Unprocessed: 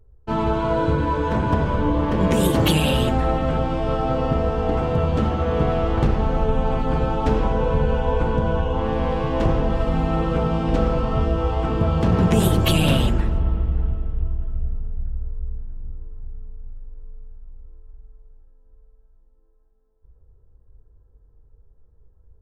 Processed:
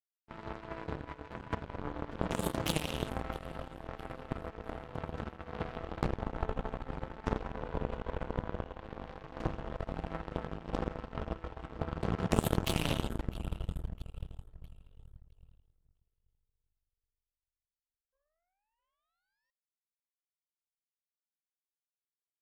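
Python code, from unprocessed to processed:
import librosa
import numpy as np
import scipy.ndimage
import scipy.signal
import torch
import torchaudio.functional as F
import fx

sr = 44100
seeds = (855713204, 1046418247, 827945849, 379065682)

y = fx.spec_paint(x, sr, seeds[0], shape='rise', start_s=18.12, length_s=1.39, low_hz=520.0, high_hz=1900.0, level_db=-33.0)
y = fx.echo_split(y, sr, split_hz=380.0, low_ms=162, high_ms=658, feedback_pct=52, wet_db=-15)
y = fx.power_curve(y, sr, exponent=3.0)
y = y * 10.0 ** (-3.0 / 20.0)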